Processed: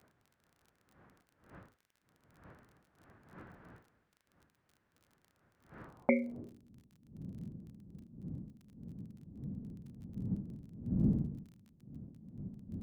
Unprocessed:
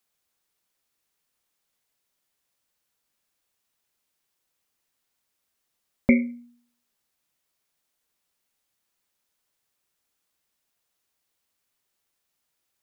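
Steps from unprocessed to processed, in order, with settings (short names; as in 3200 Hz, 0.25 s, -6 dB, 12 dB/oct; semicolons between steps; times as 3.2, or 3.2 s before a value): wind noise 120 Hz -37 dBFS; band-pass sweep 1600 Hz -> 210 Hz, 5.8–6.74; crackle 29/s -56 dBFS; gain +5 dB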